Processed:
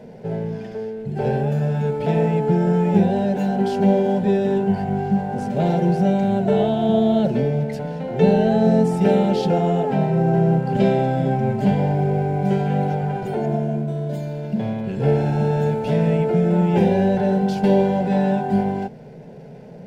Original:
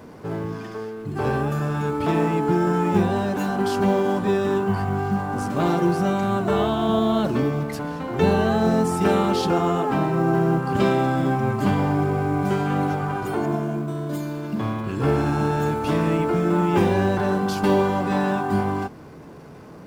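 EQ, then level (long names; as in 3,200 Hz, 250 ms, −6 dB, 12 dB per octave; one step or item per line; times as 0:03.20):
low-pass filter 1,700 Hz 6 dB per octave
phaser with its sweep stopped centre 310 Hz, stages 6
+5.5 dB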